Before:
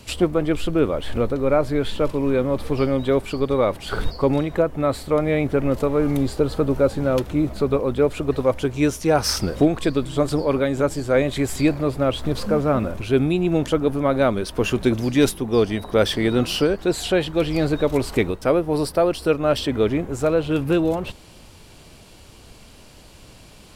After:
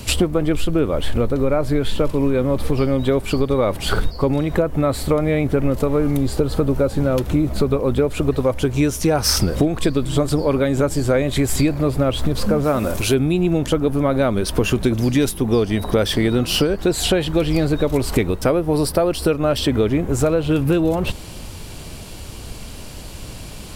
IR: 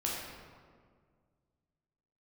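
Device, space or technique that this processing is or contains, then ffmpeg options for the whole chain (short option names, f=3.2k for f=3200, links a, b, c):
ASMR close-microphone chain: -filter_complex "[0:a]asplit=3[a][b][c];[a]afade=t=out:st=12.63:d=0.02[d];[b]bass=f=250:g=-7,treble=f=4k:g=10,afade=t=in:st=12.63:d=0.02,afade=t=out:st=13.13:d=0.02[e];[c]afade=t=in:st=13.13:d=0.02[f];[d][e][f]amix=inputs=3:normalize=0,lowshelf=f=190:g=6,acompressor=threshold=-23dB:ratio=6,highshelf=f=8.5k:g=7,volume=8.5dB"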